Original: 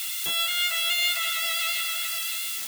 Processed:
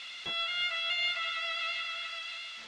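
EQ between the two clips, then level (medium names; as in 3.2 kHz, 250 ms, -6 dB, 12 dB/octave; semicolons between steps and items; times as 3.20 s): Bessel low-pass 3 kHz, order 4; -3.5 dB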